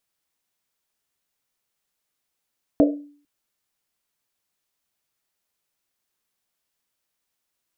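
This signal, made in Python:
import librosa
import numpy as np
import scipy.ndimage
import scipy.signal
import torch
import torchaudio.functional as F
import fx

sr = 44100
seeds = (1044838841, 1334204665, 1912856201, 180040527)

y = fx.risset_drum(sr, seeds[0], length_s=0.45, hz=290.0, decay_s=0.5, noise_hz=540.0, noise_width_hz=180.0, noise_pct=35)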